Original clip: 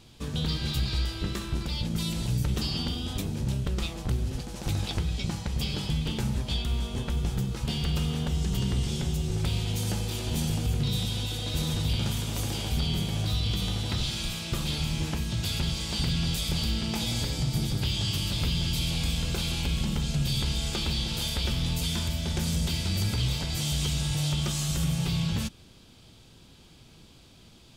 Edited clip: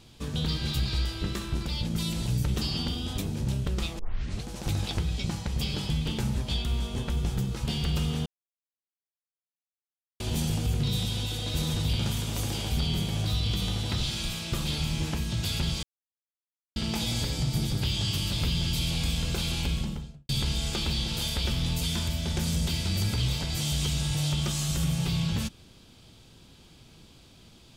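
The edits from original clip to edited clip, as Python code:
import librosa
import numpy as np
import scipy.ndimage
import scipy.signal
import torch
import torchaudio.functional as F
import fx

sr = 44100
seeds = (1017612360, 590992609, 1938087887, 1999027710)

y = fx.studio_fade_out(x, sr, start_s=19.63, length_s=0.66)
y = fx.edit(y, sr, fx.tape_start(start_s=3.99, length_s=0.46),
    fx.silence(start_s=8.26, length_s=1.94),
    fx.silence(start_s=15.83, length_s=0.93), tone=tone)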